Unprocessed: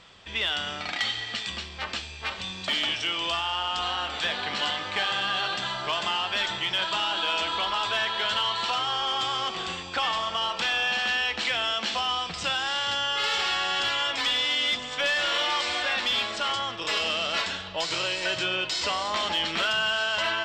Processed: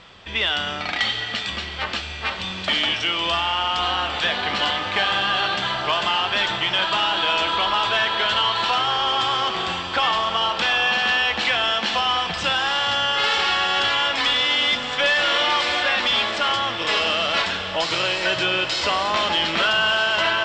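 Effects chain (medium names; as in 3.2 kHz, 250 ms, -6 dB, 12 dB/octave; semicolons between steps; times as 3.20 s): Bessel low-pass 8.4 kHz, order 2; treble shelf 6.6 kHz -9 dB; on a send: echo that smears into a reverb 692 ms, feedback 75%, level -13 dB; on the sum: trim +7 dB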